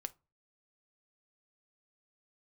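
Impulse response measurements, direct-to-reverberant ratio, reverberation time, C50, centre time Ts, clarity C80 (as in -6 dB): 11.5 dB, 0.30 s, 22.5 dB, 2 ms, 31.5 dB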